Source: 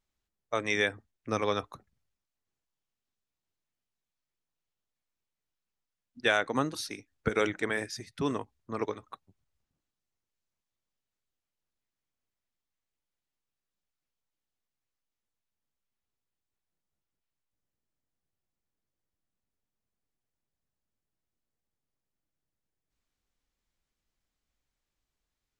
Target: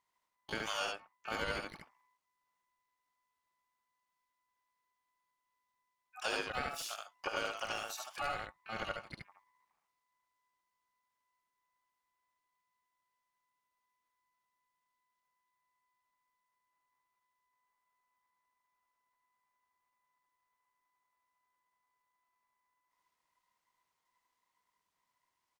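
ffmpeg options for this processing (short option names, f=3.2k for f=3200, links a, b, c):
-filter_complex "[0:a]acompressor=threshold=-42dB:ratio=2,aeval=exprs='val(0)*sin(2*PI*1000*n/s)':c=same,aecho=1:1:75:0.708,asplit=2[a][b];[b]asetrate=88200,aresample=44100,atempo=0.5,volume=-7dB[c];[a][c]amix=inputs=2:normalize=0,volume=1.5dB"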